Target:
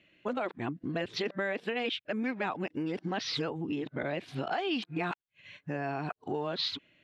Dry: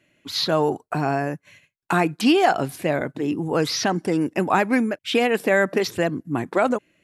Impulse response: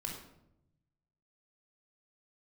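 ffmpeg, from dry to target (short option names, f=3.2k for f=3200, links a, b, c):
-af "areverse,acompressor=threshold=-27dB:ratio=6,lowpass=f=3.5k:t=q:w=2.1,volume=-4dB"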